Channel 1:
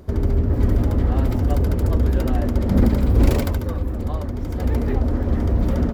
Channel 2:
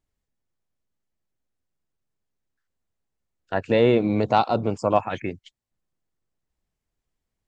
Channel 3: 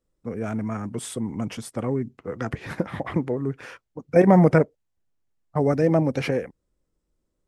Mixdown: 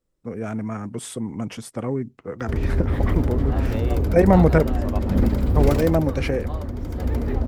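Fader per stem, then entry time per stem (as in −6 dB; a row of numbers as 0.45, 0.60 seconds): −3.0, −13.5, 0.0 decibels; 2.40, 0.00, 0.00 seconds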